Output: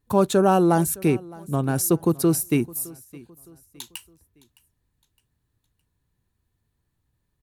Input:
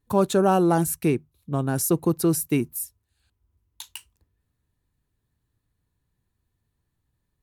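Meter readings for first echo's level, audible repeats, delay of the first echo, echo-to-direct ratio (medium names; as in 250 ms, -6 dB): -22.0 dB, 2, 613 ms, -21.5 dB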